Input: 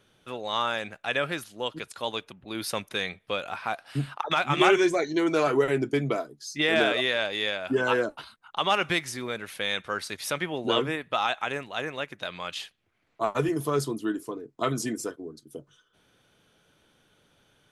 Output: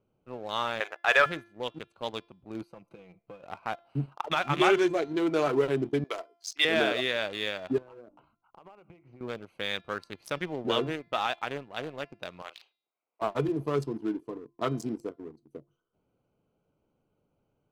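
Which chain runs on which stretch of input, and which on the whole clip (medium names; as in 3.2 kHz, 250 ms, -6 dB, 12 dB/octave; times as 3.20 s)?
0.80–1.26 s: brick-wall FIR high-pass 330 Hz + peaking EQ 1.3 kHz +12.5 dB 2.4 oct
2.62–3.43 s: comb 6 ms, depth 64% + compression 4:1, threshold -38 dBFS + hard clipper -28.5 dBFS
6.04–6.65 s: high-pass 360 Hz 24 dB/octave + tilt shelf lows -8.5 dB, about 1.1 kHz
7.78–9.21 s: low-pass 2.9 kHz 24 dB/octave + hum notches 50/100/150/200/250/300 Hz + compression, threshold -40 dBFS
12.42–13.22 s: band-pass 690–5900 Hz + doubling 37 ms -7 dB
whole clip: local Wiener filter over 25 samples; de-hum 343.6 Hz, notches 16; waveshaping leveller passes 1; trim -5.5 dB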